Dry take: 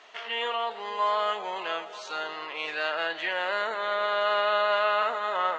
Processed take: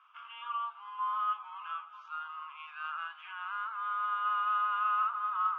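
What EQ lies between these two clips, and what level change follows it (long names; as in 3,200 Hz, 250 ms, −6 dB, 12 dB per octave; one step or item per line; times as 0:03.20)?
four-pole ladder high-pass 1,100 Hz, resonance 70%
high-frequency loss of the air 310 metres
phaser with its sweep stopped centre 2,800 Hz, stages 8
0.0 dB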